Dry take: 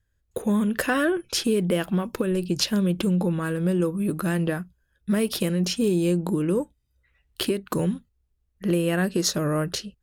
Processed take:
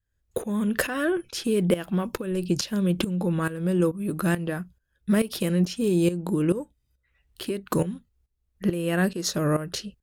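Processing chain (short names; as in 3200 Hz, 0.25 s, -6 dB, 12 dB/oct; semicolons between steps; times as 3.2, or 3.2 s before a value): tremolo saw up 2.3 Hz, depth 80%; gain +3 dB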